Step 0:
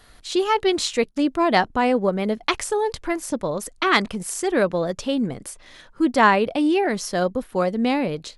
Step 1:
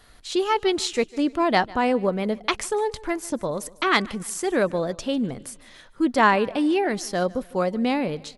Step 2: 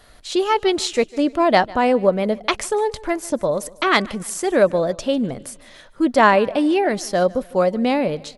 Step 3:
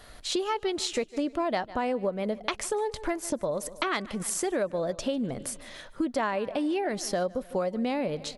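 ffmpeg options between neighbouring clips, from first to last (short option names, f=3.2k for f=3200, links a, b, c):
-af "aecho=1:1:150|300|450:0.0794|0.0342|0.0147,volume=-2dB"
-af "equalizer=f=600:w=3.4:g=6.5,volume=3dB"
-af "acompressor=threshold=-27dB:ratio=5"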